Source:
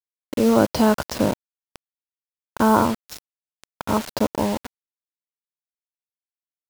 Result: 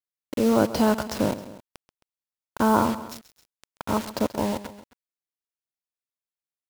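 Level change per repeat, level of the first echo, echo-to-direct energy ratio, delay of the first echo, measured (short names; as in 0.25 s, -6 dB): -4.5 dB, -15.0 dB, -13.5 dB, 0.133 s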